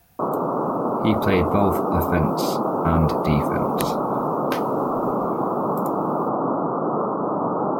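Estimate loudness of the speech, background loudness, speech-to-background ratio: -25.0 LUFS, -23.5 LUFS, -1.5 dB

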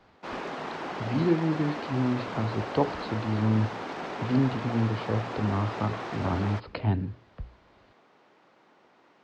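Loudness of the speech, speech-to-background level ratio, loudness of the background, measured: -29.0 LUFS, 6.5 dB, -35.5 LUFS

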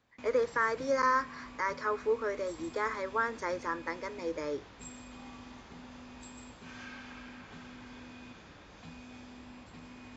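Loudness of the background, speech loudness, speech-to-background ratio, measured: -49.0 LUFS, -33.0 LUFS, 16.0 dB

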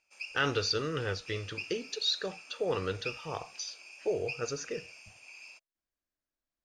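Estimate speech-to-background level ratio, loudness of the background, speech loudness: 11.5 dB, -45.5 LUFS, -34.0 LUFS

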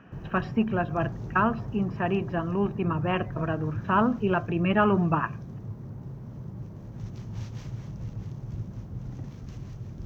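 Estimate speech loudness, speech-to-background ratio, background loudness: -27.0 LUFS, 11.0 dB, -38.0 LUFS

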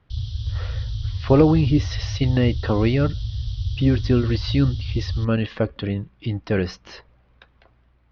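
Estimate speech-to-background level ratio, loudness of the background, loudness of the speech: 6.5 dB, -28.5 LUFS, -22.0 LUFS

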